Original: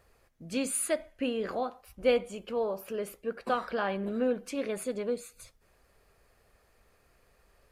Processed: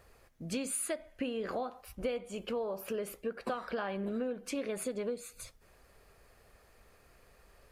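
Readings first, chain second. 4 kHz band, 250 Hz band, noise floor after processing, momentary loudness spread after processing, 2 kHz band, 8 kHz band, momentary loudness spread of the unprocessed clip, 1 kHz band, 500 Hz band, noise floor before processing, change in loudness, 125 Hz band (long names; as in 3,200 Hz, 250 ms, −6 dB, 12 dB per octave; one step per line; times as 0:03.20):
−4.5 dB, −4.0 dB, −63 dBFS, 7 LU, −5.5 dB, −3.0 dB, 9 LU, −6.0 dB, −5.5 dB, −67 dBFS, −5.0 dB, can't be measured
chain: downward compressor 8 to 1, threshold −36 dBFS, peak gain reduction 16 dB
level +3.5 dB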